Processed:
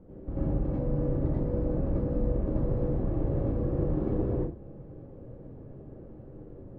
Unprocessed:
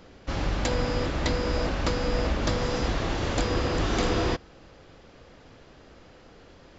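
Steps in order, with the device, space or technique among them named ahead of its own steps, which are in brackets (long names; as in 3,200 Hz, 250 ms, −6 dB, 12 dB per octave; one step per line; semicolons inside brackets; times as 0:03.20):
television next door (downward compressor 4 to 1, threshold −31 dBFS, peak gain reduction 9 dB; low-pass filter 390 Hz 12 dB per octave; convolution reverb RT60 0.35 s, pre-delay 82 ms, DRR −7.5 dB)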